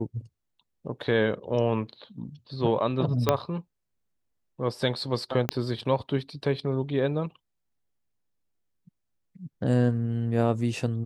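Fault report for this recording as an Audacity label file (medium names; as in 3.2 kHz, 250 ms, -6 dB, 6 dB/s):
3.290000	3.290000	pop -7 dBFS
5.490000	5.490000	pop -9 dBFS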